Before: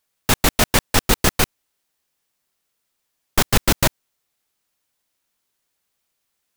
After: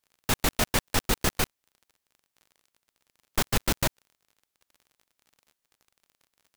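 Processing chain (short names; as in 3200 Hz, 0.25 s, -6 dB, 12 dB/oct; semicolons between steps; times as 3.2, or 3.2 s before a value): crackle 40/s -36 dBFS; gain -8.5 dB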